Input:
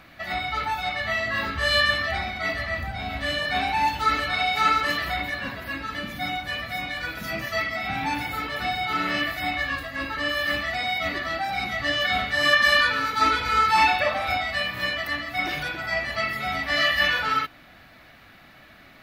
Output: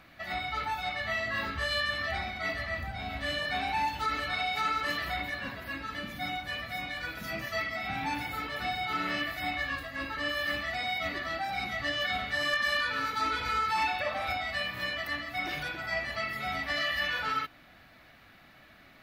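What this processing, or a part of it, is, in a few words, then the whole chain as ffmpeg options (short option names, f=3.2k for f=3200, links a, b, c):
clipper into limiter: -af "asoftclip=type=hard:threshold=-11dB,alimiter=limit=-15.5dB:level=0:latency=1:release=147,volume=-6dB"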